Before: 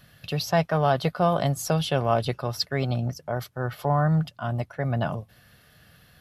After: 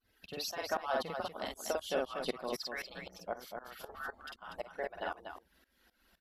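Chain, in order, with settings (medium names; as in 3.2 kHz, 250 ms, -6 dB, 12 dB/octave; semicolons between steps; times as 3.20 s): harmonic-percussive separation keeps percussive; multi-tap echo 48/241 ms -3/-5.5 dB; tremolo saw up 3.9 Hz, depth 90%; trim -5.5 dB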